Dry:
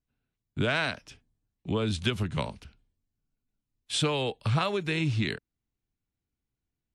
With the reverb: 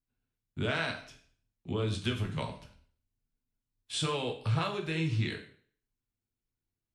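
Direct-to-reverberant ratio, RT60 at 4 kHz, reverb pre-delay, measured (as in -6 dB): 2.0 dB, 0.50 s, 5 ms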